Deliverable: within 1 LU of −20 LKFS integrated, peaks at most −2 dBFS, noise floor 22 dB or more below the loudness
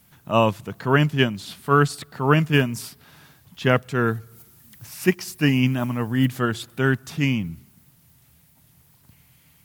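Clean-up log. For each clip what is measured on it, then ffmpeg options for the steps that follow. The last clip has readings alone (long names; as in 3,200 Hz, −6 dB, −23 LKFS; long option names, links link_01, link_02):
integrated loudness −22.0 LKFS; sample peak −3.0 dBFS; target loudness −20.0 LKFS
→ -af "volume=2dB,alimiter=limit=-2dB:level=0:latency=1"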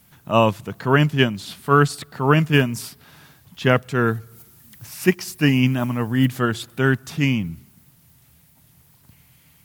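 integrated loudness −20.0 LKFS; sample peak −2.0 dBFS; background noise floor −56 dBFS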